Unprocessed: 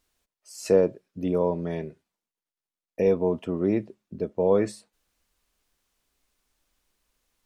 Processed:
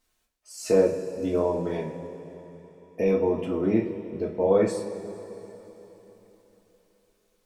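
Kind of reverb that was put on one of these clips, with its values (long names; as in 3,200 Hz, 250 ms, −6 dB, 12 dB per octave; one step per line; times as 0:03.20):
coupled-rooms reverb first 0.31 s, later 3.8 s, from −18 dB, DRR −3.5 dB
level −3 dB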